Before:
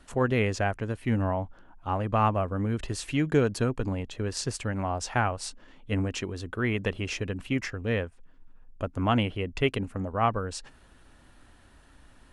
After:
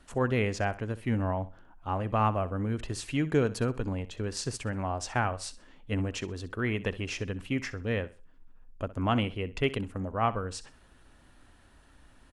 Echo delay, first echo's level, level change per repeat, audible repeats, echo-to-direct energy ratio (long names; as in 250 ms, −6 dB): 64 ms, −17.0 dB, −10.5 dB, 2, −16.5 dB